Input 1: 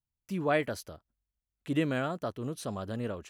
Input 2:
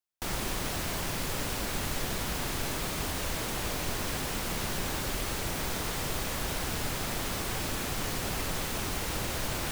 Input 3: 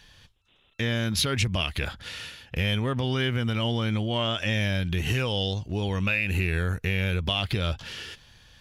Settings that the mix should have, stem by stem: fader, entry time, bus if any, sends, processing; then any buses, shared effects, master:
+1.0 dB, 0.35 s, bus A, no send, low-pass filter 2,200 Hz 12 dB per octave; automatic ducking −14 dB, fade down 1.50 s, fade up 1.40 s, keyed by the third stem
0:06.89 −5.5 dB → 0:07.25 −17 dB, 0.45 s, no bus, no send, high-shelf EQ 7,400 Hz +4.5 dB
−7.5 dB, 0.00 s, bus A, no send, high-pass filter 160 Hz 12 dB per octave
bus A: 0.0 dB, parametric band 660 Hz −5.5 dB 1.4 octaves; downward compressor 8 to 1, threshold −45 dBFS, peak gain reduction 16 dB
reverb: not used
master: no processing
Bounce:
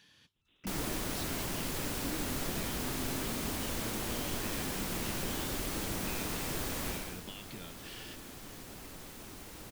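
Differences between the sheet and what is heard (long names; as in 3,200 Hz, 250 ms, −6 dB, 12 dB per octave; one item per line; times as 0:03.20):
stem 1 +1.0 dB → +12.5 dB
master: extra parametric band 280 Hz +6 dB 1.1 octaves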